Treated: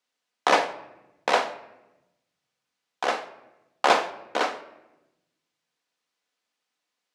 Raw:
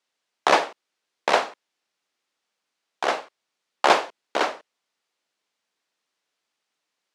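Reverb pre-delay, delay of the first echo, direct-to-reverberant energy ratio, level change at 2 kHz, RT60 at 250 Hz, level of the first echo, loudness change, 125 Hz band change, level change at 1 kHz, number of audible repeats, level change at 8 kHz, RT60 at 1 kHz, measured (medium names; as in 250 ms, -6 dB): 4 ms, no echo, 7.5 dB, -1.5 dB, 1.6 s, no echo, -2.0 dB, no reading, -1.5 dB, no echo, -2.0 dB, 0.90 s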